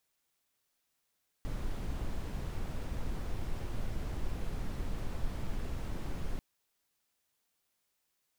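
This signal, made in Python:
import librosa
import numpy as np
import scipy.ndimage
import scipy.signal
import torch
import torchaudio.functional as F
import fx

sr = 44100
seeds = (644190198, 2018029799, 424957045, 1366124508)

y = fx.noise_colour(sr, seeds[0], length_s=4.94, colour='brown', level_db=-34.5)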